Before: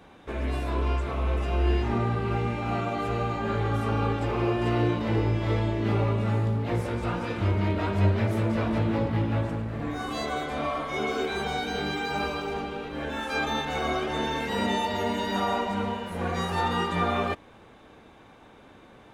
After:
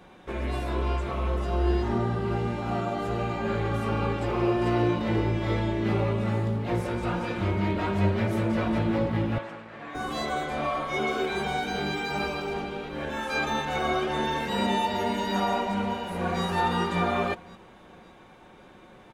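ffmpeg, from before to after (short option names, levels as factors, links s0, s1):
-filter_complex "[0:a]asettb=1/sr,asplit=3[s0][s1][s2];[s0]atrim=end=1.284[s3];[s1]atrim=start=1.28:end=3.19,asetpts=PTS-STARTPTS,afade=t=in:d=0.004:c=qsin,afade=t=out:st=1.906:d=0.004:c=qsin,equalizer=f=2400:t=o:w=0.39:g=-8.5[s4];[s2]atrim=start=3.186[s5];[s3][s4]acrossfade=d=0.004:c1=hsin:c2=qsin[s6];[s6][s5]acrossfade=d=0.004:c1=qsin:c2=hsin,asettb=1/sr,asplit=3[s7][s8][s9];[s7]atrim=end=9.384[s10];[s8]atrim=start=9.38:end=9.95,asetpts=PTS-STARTPTS,afade=t=in:d=0.004:c=qsin,afade=t=out:st=0.566:d=0.004:c=qsin,bandpass=f=1900:t=q:w=0.55[s11];[s9]atrim=start=9.946[s12];[s10][s11]acrossfade=d=0.004:c1=hsin:c2=qsin[s13];[s13][s12]acrossfade=d=0.004:c1=qsin:c2=hsin,asplit=2[s14][s15];[s15]afade=t=in:st=15.33:d=0.01,afade=t=out:st=16.43:d=0.01,aecho=0:1:560|1120|1680|2240:0.223872|0.0895488|0.0358195|0.0143278[s16];[s14][s16]amix=inputs=2:normalize=0,aecho=1:1:5.5:0.36"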